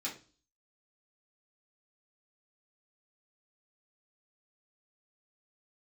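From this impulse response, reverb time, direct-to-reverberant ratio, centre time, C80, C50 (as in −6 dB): 0.35 s, −5.5 dB, 20 ms, 16.0 dB, 10.0 dB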